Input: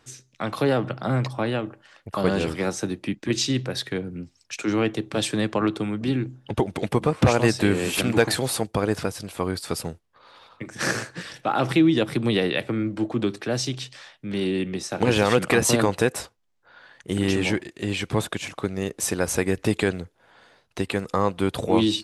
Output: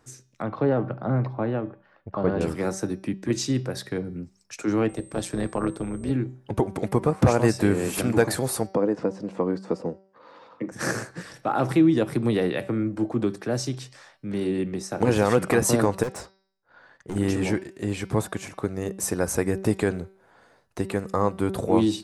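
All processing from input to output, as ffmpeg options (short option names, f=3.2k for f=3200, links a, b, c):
-filter_complex "[0:a]asettb=1/sr,asplit=3[a][b][c];[a]atrim=end=0.424[d];[b]atrim=start=0.42:end=2.41,asetpts=PTS-STARTPTS,afade=t=in:d=0.004:c=qsin,afade=t=out:st=1.986:d=0.004:c=qsin,lowpass=f=4.1k:w=0.5412,lowpass=f=4.1k:w=1.3066,highshelf=f=2.1k:g=-9.5[e];[c]atrim=start=2.406[f];[d][e]acrossfade=d=0.004:c1=hsin:c2=qsin[g];[g][f]acrossfade=d=0.004:c1=qsin:c2=hsin,asettb=1/sr,asplit=3[h][i][j];[h]atrim=end=4.894[k];[i]atrim=start=4.89:end=6.11,asetpts=PTS-STARTPTS,afade=t=in:d=0.004:c=qsin,afade=t=out:st=1.216:d=0.004:c=qsin,aeval=exprs='val(0)+0.00562*sin(2*PI*8300*n/s)':c=same,tremolo=f=180:d=0.71[l];[j]atrim=start=6.106[m];[k][l]acrossfade=d=0.004:c1=hsin:c2=qsin[n];[n][m]acrossfade=d=0.004:c1=qsin:c2=hsin,asettb=1/sr,asplit=3[o][p][q];[o]atrim=end=8.734[r];[p]atrim=start=8.73:end=10.72,asetpts=PTS-STARTPTS,afade=t=in:d=0.004:c=qsin,afade=t=out:st=1.986:d=0.004:c=qsin,acrossover=split=180|1100[s][t][u];[s]acompressor=threshold=-44dB:ratio=4[v];[t]acompressor=threshold=-26dB:ratio=4[w];[u]acompressor=threshold=-46dB:ratio=4[x];[v][w][x]amix=inputs=3:normalize=0,highpass=120,equalizer=f=190:t=q:w=4:g=9,equalizer=f=300:t=q:w=4:g=9,equalizer=f=500:t=q:w=4:g=9,equalizer=f=970:t=q:w=4:g=5,equalizer=f=1.9k:t=q:w=4:g=5,equalizer=f=2.8k:t=q:w=4:g=5,lowpass=f=6.6k:w=0.5412,lowpass=f=6.6k:w=1.3066[y];[q]atrim=start=10.716[z];[r][y]acrossfade=d=0.004:c1=hsin:c2=qsin[aa];[aa][z]acrossfade=d=0.004:c1=qsin:c2=hsin,asettb=1/sr,asplit=3[ab][ac][ad];[ab]atrim=end=16.034[ae];[ac]atrim=start=16.03:end=17.16,asetpts=PTS-STARTPTS,afade=t=in:d=0.004:c=qsin,afade=t=out:st=1.126:d=0.004:c=qsin,lowpass=6.8k,agate=range=-11dB:threshold=-54dB:ratio=16:release=100:detection=peak,volume=26dB,asoftclip=hard,volume=-26dB[af];[ad]atrim=start=17.156[ag];[ae][af]acrossfade=d=0.004:c1=hsin:c2=qsin[ah];[ah][ag]acrossfade=d=0.004:c1=qsin:c2=hsin,equalizer=f=3.2k:t=o:w=1.3:g=-11,bandreject=f=192.2:t=h:w=4,bandreject=f=384.4:t=h:w=4,bandreject=f=576.6:t=h:w=4,bandreject=f=768.8:t=h:w=4,bandreject=f=961:t=h:w=4,bandreject=f=1.1532k:t=h:w=4,bandreject=f=1.3454k:t=h:w=4,bandreject=f=1.5376k:t=h:w=4,bandreject=f=1.7298k:t=h:w=4,bandreject=f=1.922k:t=h:w=4,bandreject=f=2.1142k:t=h:w=4,bandreject=f=2.3064k:t=h:w=4,bandreject=f=2.4986k:t=h:w=4,bandreject=f=2.6908k:t=h:w=4,bandreject=f=2.883k:t=h:w=4,bandreject=f=3.0752k:t=h:w=4,bandreject=f=3.2674k:t=h:w=4,bandreject=f=3.4596k:t=h:w=4,bandreject=f=3.6518k:t=h:w=4,bandreject=f=3.844k:t=h:w=4,bandreject=f=4.0362k:t=h:w=4,bandreject=f=4.2284k:t=h:w=4,bandreject=f=4.4206k:t=h:w=4,bandreject=f=4.6128k:t=h:w=4,bandreject=f=4.805k:t=h:w=4,bandreject=f=4.9972k:t=h:w=4,bandreject=f=5.1894k:t=h:w=4,bandreject=f=5.3816k:t=h:w=4,bandreject=f=5.5738k:t=h:w=4,bandreject=f=5.766k:t=h:w=4"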